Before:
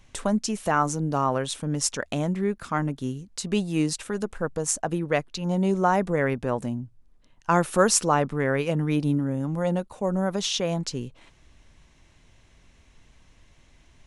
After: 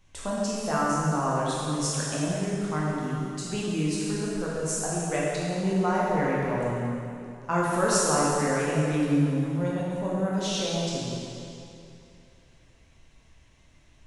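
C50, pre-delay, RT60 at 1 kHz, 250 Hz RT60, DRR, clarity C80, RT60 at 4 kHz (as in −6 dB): −3.0 dB, 6 ms, 2.7 s, 2.8 s, −6.0 dB, −1.0 dB, 2.5 s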